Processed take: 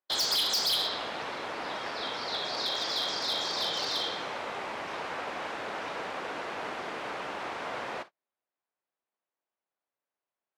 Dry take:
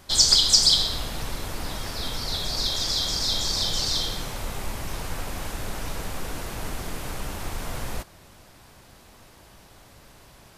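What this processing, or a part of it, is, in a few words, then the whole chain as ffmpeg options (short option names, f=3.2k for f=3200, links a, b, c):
walkie-talkie: -af "highpass=430,lowpass=2.7k,asoftclip=type=hard:threshold=-27dB,agate=range=-42dB:threshold=-45dB:ratio=16:detection=peak,volume=3dB"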